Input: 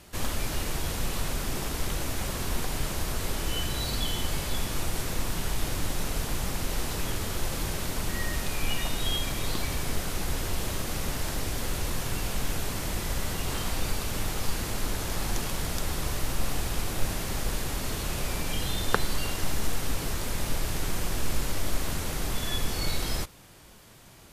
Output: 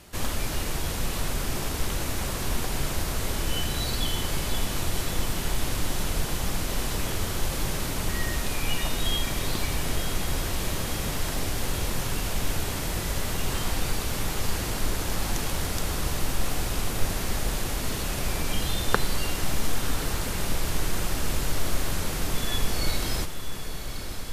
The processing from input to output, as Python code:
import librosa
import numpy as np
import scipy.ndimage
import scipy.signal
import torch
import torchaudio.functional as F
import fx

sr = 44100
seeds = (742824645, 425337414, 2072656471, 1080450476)

y = fx.echo_diffused(x, sr, ms=1064, feedback_pct=71, wet_db=-10.0)
y = y * librosa.db_to_amplitude(1.5)